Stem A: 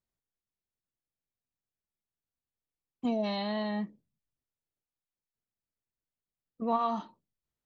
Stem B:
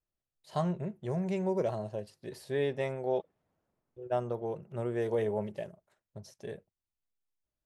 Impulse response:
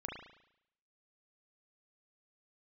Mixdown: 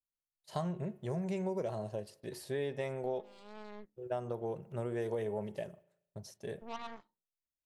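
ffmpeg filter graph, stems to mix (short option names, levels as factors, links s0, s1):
-filter_complex "[0:a]aeval=exprs='0.112*(cos(1*acos(clip(val(0)/0.112,-1,1)))-cos(1*PI/2))+0.0282*(cos(3*acos(clip(val(0)/0.112,-1,1)))-cos(3*PI/2))+0.0141*(cos(6*acos(clip(val(0)/0.112,-1,1)))-cos(6*PI/2))+0.000708*(cos(7*acos(clip(val(0)/0.112,-1,1)))-cos(7*PI/2))':c=same,volume=0.251[s0];[1:a]highshelf=f=6600:g=6,bandreject=f=363.3:t=h:w=4,bandreject=f=726.6:t=h:w=4,bandreject=f=1089.9:t=h:w=4,bandreject=f=1453.2:t=h:w=4,bandreject=f=1816.5:t=h:w=4,bandreject=f=2179.8:t=h:w=4,bandreject=f=2543.1:t=h:w=4,bandreject=f=2906.4:t=h:w=4,bandreject=f=3269.7:t=h:w=4,agate=range=0.2:threshold=0.00141:ratio=16:detection=peak,volume=0.891,asplit=3[s1][s2][s3];[s2]volume=0.106[s4];[s3]apad=whole_len=337772[s5];[s0][s5]sidechaincompress=threshold=0.00794:ratio=5:attack=5.1:release=370[s6];[2:a]atrim=start_sample=2205[s7];[s4][s7]afir=irnorm=-1:irlink=0[s8];[s6][s1][s8]amix=inputs=3:normalize=0,acompressor=threshold=0.0224:ratio=4"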